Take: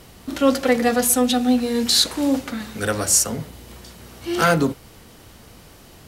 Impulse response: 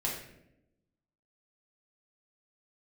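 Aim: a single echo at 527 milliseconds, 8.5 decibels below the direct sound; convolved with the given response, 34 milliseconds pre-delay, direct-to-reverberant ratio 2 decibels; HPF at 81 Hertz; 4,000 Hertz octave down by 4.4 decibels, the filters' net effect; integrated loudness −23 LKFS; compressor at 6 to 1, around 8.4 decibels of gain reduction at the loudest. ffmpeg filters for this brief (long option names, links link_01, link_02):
-filter_complex "[0:a]highpass=81,equalizer=frequency=4000:width_type=o:gain=-5,acompressor=threshold=-21dB:ratio=6,aecho=1:1:527:0.376,asplit=2[link_01][link_02];[1:a]atrim=start_sample=2205,adelay=34[link_03];[link_02][link_03]afir=irnorm=-1:irlink=0,volume=-7dB[link_04];[link_01][link_04]amix=inputs=2:normalize=0,volume=0.5dB"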